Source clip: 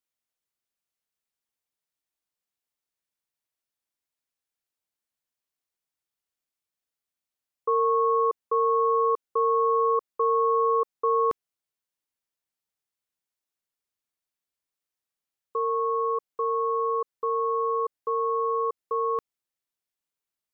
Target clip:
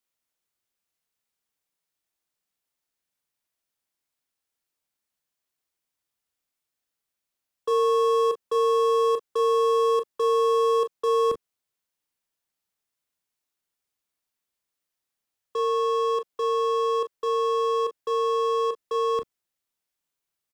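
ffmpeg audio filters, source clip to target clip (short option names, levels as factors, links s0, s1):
-filter_complex "[0:a]acrossover=split=210|650[s0][s1][s2];[s2]asoftclip=type=hard:threshold=0.0133[s3];[s0][s1][s3]amix=inputs=3:normalize=0,aecho=1:1:30|41:0.335|0.251,volume=1.5"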